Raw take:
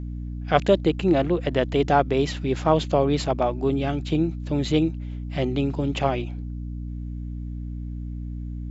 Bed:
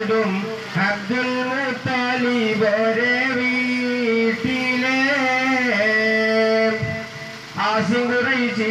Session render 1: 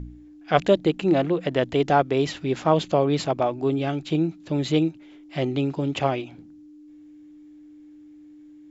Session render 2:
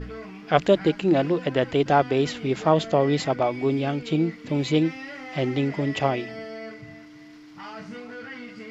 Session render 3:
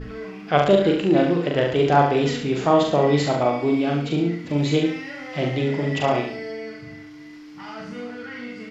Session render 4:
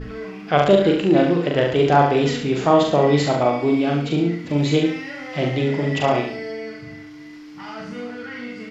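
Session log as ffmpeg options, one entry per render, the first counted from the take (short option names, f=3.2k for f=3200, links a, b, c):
-af "bandreject=f=60:t=h:w=4,bandreject=f=120:t=h:w=4,bandreject=f=180:t=h:w=4,bandreject=f=240:t=h:w=4"
-filter_complex "[1:a]volume=-20dB[a];[0:a][a]amix=inputs=2:normalize=0"
-filter_complex "[0:a]asplit=2[a][b];[b]adelay=41,volume=-3dB[c];[a][c]amix=inputs=2:normalize=0,aecho=1:1:70|140|210|280:0.473|0.175|0.0648|0.024"
-af "volume=2dB,alimiter=limit=-2dB:level=0:latency=1"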